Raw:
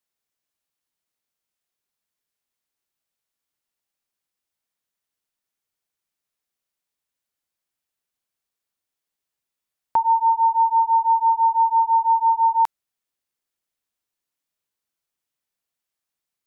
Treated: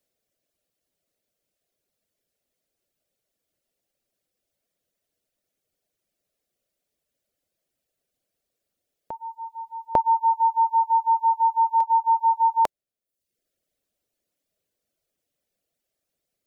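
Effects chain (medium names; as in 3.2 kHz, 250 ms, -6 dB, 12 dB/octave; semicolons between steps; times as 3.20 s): resonant low shelf 750 Hz +6.5 dB, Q 3; on a send: reverse echo 848 ms -16 dB; on the sum: reverb removal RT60 0.72 s; trim +4 dB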